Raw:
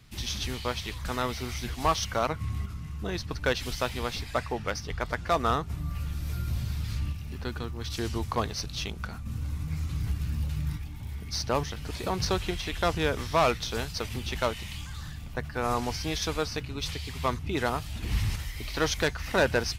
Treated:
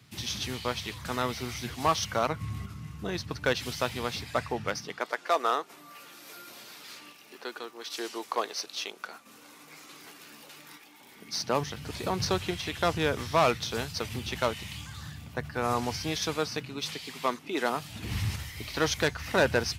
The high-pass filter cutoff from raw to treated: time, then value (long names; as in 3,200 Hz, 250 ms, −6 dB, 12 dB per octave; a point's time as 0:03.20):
high-pass filter 24 dB per octave
0:04.66 93 Hz
0:05.12 350 Hz
0:10.97 350 Hz
0:11.82 86 Hz
0:15.98 86 Hz
0:17.57 260 Hz
0:18.10 76 Hz